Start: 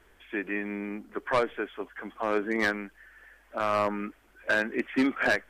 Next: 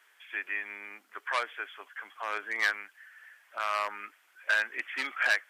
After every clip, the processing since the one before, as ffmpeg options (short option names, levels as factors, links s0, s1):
-af "highpass=1300,volume=1.26"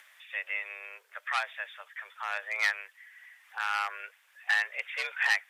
-af "acompressor=mode=upward:threshold=0.00282:ratio=2.5,afreqshift=190"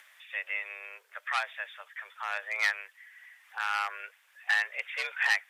-af anull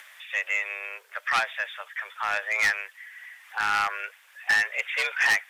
-af "asoftclip=type=tanh:threshold=0.0596,volume=2.66"